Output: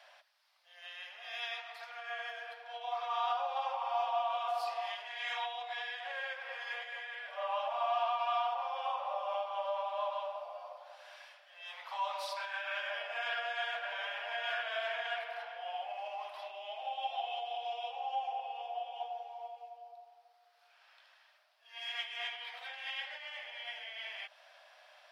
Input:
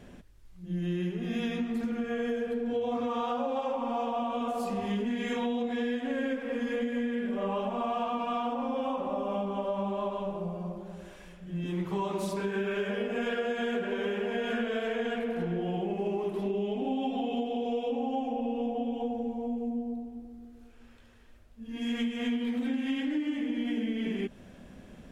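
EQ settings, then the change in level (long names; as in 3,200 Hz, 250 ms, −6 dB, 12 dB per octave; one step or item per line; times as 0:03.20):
Butterworth high-pass 610 Hz 72 dB per octave
high shelf with overshoot 5,900 Hz −6 dB, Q 3
0.0 dB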